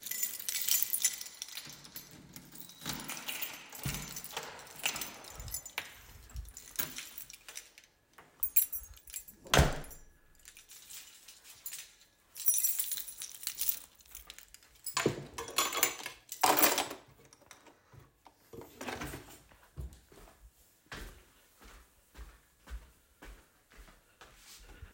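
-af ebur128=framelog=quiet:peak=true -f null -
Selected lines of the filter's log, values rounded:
Integrated loudness:
  I:         -33.1 LUFS
  Threshold: -46.1 LUFS
Loudness range:
  LRA:        21.3 LU
  Threshold: -56.2 LUFS
  LRA low:   -53.1 LUFS
  LRA high:  -31.9 LUFS
True peak:
  Peak:       -9.8 dBFS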